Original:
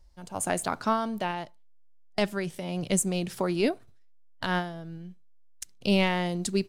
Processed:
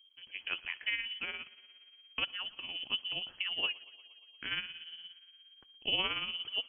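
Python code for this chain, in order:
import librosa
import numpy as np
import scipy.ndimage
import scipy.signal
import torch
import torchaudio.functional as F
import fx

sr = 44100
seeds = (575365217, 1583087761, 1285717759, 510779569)

y = fx.freq_invert(x, sr, carrier_hz=3200)
y = y * (1.0 - 0.51 / 2.0 + 0.51 / 2.0 * np.cos(2.0 * np.pi * 17.0 * (np.arange(len(y)) / sr)))
y = fx.echo_thinned(y, sr, ms=117, feedback_pct=71, hz=160.0, wet_db=-22.0)
y = y * librosa.db_to_amplitude(-7.0)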